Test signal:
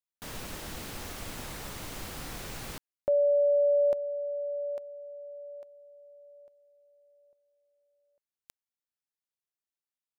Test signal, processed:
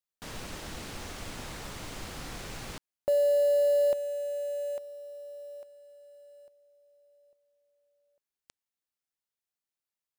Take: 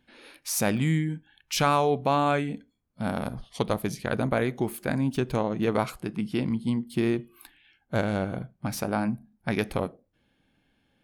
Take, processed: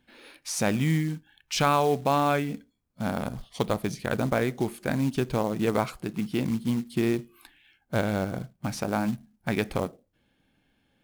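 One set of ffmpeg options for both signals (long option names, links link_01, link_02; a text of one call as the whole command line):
ffmpeg -i in.wav -filter_complex "[0:a]acrossover=split=9700[link_01][link_02];[link_02]acompressor=threshold=-58dB:ratio=4:attack=1:release=60[link_03];[link_01][link_03]amix=inputs=2:normalize=0,acrusher=bits=5:mode=log:mix=0:aa=0.000001" out.wav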